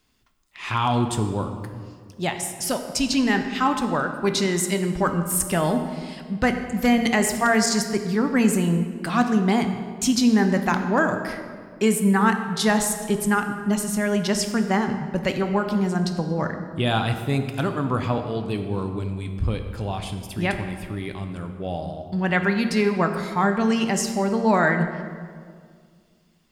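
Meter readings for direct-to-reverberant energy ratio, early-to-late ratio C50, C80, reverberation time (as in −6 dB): 6.0 dB, 7.5 dB, 9.0 dB, 2.0 s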